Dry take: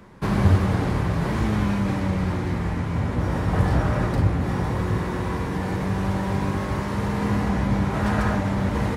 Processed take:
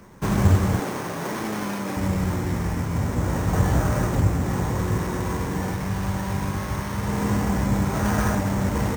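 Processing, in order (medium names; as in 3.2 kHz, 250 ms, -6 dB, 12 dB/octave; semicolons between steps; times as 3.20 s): 0.79–1.97 s: high-pass 270 Hz 12 dB/octave; 5.71–7.08 s: peaking EQ 370 Hz -5.5 dB 1.9 oct; sample-rate reducer 7.5 kHz, jitter 0%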